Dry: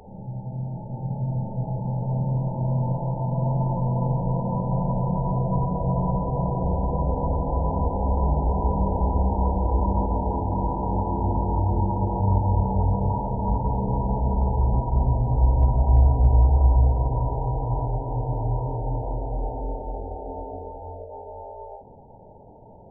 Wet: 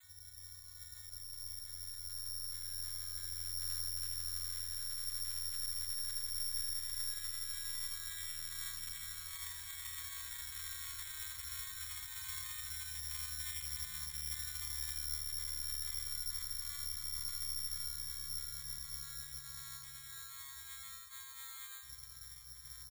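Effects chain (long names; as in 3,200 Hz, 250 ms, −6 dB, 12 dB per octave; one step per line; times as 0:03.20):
vocoder with a gliding carrier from F#3, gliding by −6 semitones
pitch-shifted copies added −12 semitones −16 dB, +12 semitones −14 dB
soft clipping −26 dBFS, distortion −10 dB
reversed playback
downward compressor 10 to 1, threshold −40 dBFS, peak gain reduction 12.5 dB
reversed playback
inverse Chebyshev band-stop filter 190–660 Hz, stop band 60 dB
on a send: repeating echo 80 ms, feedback 60%, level −6.5 dB
on the sum: bad sample-rate conversion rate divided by 8×, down filtered, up zero stuff
level +6.5 dB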